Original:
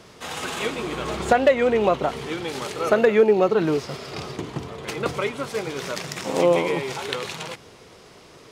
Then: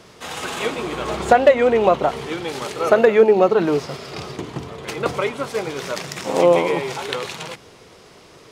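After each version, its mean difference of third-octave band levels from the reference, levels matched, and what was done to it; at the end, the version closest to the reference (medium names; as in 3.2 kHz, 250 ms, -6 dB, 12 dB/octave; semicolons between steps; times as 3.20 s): 2.0 dB: de-hum 52.42 Hz, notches 5; dynamic bell 750 Hz, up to +4 dB, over -32 dBFS, Q 0.87; trim +1.5 dB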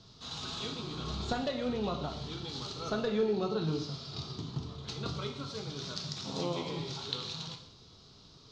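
6.0 dB: FFT filter 140 Hz 0 dB, 500 Hz -16 dB, 1.3 kHz -11 dB, 2 kHz -21 dB, 2.8 kHz -12 dB, 4 kHz +3 dB, 6.5 kHz -8 dB, 10 kHz -30 dB; gated-style reverb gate 220 ms falling, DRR 3 dB; trim -3.5 dB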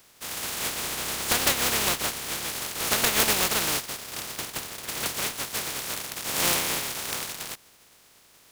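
10.0 dB: spectral contrast reduction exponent 0.17; in parallel at -11 dB: fuzz box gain 34 dB, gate -36 dBFS; on the sum: trim -8.5 dB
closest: first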